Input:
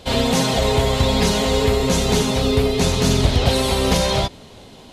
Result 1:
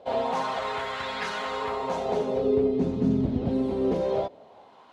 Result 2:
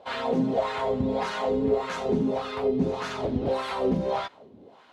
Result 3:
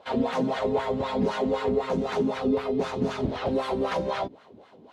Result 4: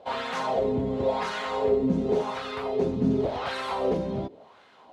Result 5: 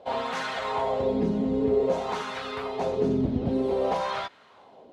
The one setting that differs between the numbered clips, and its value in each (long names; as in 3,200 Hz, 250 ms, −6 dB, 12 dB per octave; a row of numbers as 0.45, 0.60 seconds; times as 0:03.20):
LFO wah, speed: 0.23, 1.7, 3.9, 0.91, 0.52 Hertz